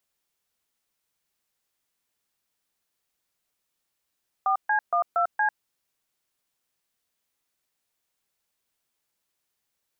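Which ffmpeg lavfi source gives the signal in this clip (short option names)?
-f lavfi -i "aevalsrc='0.075*clip(min(mod(t,0.233),0.097-mod(t,0.233))/0.002,0,1)*(eq(floor(t/0.233),0)*(sin(2*PI*770*mod(t,0.233))+sin(2*PI*1209*mod(t,0.233)))+eq(floor(t/0.233),1)*(sin(2*PI*852*mod(t,0.233))+sin(2*PI*1633*mod(t,0.233)))+eq(floor(t/0.233),2)*(sin(2*PI*697*mod(t,0.233))+sin(2*PI*1209*mod(t,0.233)))+eq(floor(t/0.233),3)*(sin(2*PI*697*mod(t,0.233))+sin(2*PI*1336*mod(t,0.233)))+eq(floor(t/0.233),4)*(sin(2*PI*852*mod(t,0.233))+sin(2*PI*1633*mod(t,0.233))))':d=1.165:s=44100"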